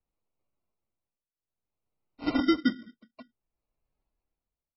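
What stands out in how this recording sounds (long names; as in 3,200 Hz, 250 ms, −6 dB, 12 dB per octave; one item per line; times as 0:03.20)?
phaser sweep stages 2, 3.8 Hz, lowest notch 520–2,000 Hz
aliases and images of a low sample rate 1,700 Hz, jitter 0%
tremolo triangle 0.57 Hz, depth 95%
MP3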